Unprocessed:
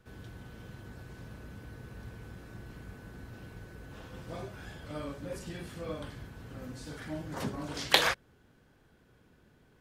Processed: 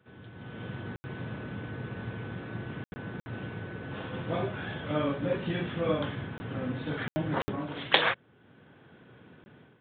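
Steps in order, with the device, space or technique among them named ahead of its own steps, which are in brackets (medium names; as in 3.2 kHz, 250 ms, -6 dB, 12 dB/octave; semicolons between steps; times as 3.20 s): call with lost packets (high-pass 100 Hz 24 dB/octave; resampled via 8 kHz; level rider gain up to 11.5 dB; lost packets bursts); trim -1 dB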